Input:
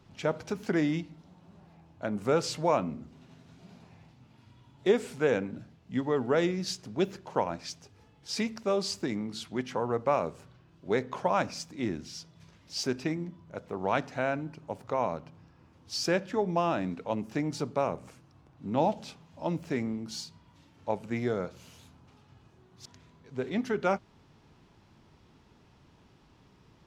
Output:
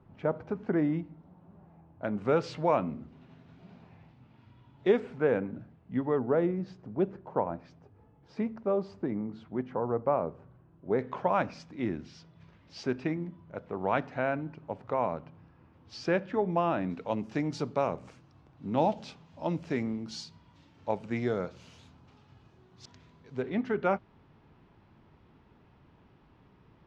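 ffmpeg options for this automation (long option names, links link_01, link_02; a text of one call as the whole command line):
ffmpeg -i in.wav -af "asetnsamples=nb_out_samples=441:pad=0,asendcmd='2.04 lowpass f 2800;5 lowpass f 1700;6.19 lowpass f 1100;10.99 lowpass f 2600;16.9 lowpass f 5300;23.42 lowpass f 2500',lowpass=1300" out.wav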